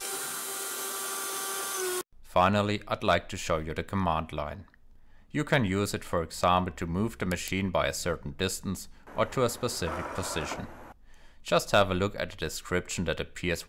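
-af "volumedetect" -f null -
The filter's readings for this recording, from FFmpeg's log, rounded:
mean_volume: -30.4 dB
max_volume: -12.2 dB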